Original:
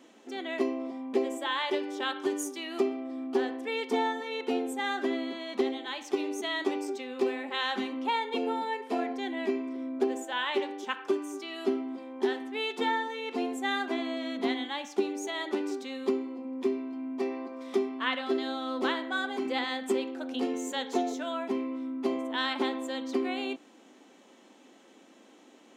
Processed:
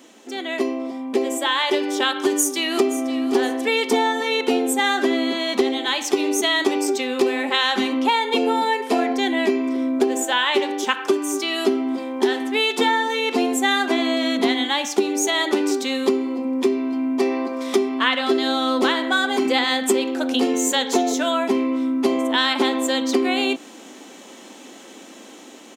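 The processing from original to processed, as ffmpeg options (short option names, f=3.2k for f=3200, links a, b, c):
-filter_complex "[0:a]asplit=2[a][b];[b]afade=t=in:st=2.19:d=0.01,afade=t=out:st=3.18:d=0.01,aecho=0:1:520|1040|1560:0.188365|0.0659277|0.0230747[c];[a][c]amix=inputs=2:normalize=0,dynaudnorm=f=100:g=31:m=7dB,highshelf=f=4.5k:g=9.5,acompressor=threshold=-24dB:ratio=2.5,volume=7dB"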